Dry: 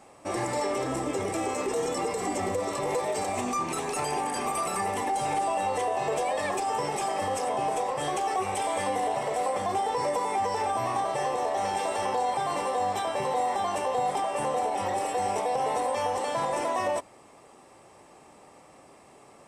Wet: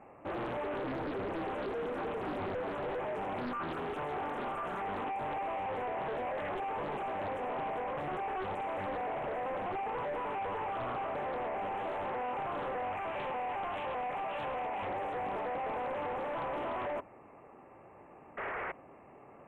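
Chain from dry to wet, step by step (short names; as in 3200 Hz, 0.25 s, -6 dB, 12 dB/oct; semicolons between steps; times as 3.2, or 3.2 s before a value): 12.83–14.87 fifteen-band EQ 160 Hz -6 dB, 400 Hz -8 dB, 2500 Hz +10 dB; 18.37–18.72 painted sound noise 350–2300 Hz -32 dBFS; hard clip -33 dBFS, distortion -7 dB; brick-wall FIR band-stop 2800–6600 Hz; air absorption 390 m; Doppler distortion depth 0.75 ms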